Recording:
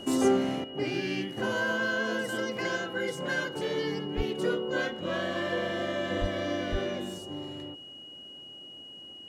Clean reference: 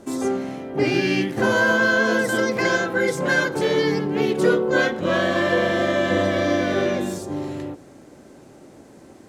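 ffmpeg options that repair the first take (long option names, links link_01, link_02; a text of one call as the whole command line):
ffmpeg -i in.wav -filter_complex "[0:a]bandreject=frequency=2900:width=30,asplit=3[link_01][link_02][link_03];[link_01]afade=type=out:start_time=4.16:duration=0.02[link_04];[link_02]highpass=frequency=140:width=0.5412,highpass=frequency=140:width=1.3066,afade=type=in:start_time=4.16:duration=0.02,afade=type=out:start_time=4.28:duration=0.02[link_05];[link_03]afade=type=in:start_time=4.28:duration=0.02[link_06];[link_04][link_05][link_06]amix=inputs=3:normalize=0,asplit=3[link_07][link_08][link_09];[link_07]afade=type=out:start_time=6.2:duration=0.02[link_10];[link_08]highpass=frequency=140:width=0.5412,highpass=frequency=140:width=1.3066,afade=type=in:start_time=6.2:duration=0.02,afade=type=out:start_time=6.32:duration=0.02[link_11];[link_09]afade=type=in:start_time=6.32:duration=0.02[link_12];[link_10][link_11][link_12]amix=inputs=3:normalize=0,asplit=3[link_13][link_14][link_15];[link_13]afade=type=out:start_time=6.71:duration=0.02[link_16];[link_14]highpass=frequency=140:width=0.5412,highpass=frequency=140:width=1.3066,afade=type=in:start_time=6.71:duration=0.02,afade=type=out:start_time=6.83:duration=0.02[link_17];[link_15]afade=type=in:start_time=6.83:duration=0.02[link_18];[link_16][link_17][link_18]amix=inputs=3:normalize=0,asetnsamples=nb_out_samples=441:pad=0,asendcmd='0.64 volume volume 11dB',volume=0dB" out.wav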